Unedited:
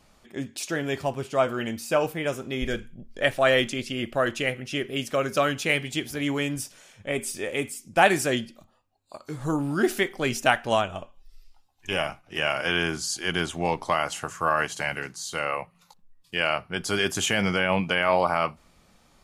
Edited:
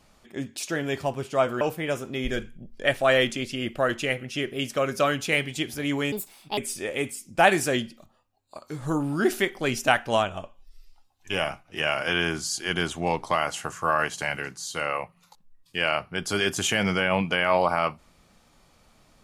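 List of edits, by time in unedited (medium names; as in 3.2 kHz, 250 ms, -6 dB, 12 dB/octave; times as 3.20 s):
1.61–1.98 s: delete
6.49–7.16 s: speed 147%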